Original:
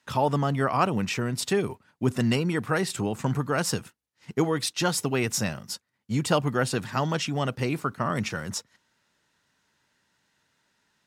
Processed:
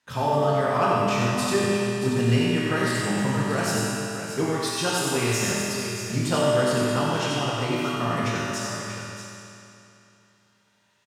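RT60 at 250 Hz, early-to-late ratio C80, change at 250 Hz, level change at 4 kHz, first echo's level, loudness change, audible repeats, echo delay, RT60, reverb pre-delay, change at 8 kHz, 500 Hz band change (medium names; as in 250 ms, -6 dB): 3.0 s, -3.5 dB, +2.5 dB, +3.5 dB, -4.0 dB, +3.0 dB, 2, 94 ms, 3.0 s, 3 ms, +3.5 dB, +4.5 dB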